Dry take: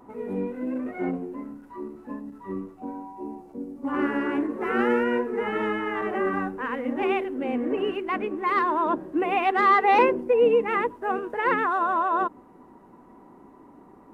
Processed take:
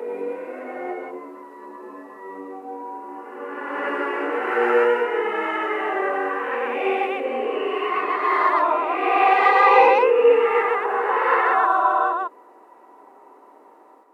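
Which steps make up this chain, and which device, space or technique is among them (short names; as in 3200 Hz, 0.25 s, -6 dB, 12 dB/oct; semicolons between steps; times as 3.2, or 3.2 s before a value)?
ghost voice (reverse; reverb RT60 2.0 s, pre-delay 0.103 s, DRR -6 dB; reverse; HPF 420 Hz 24 dB/oct); gain -1 dB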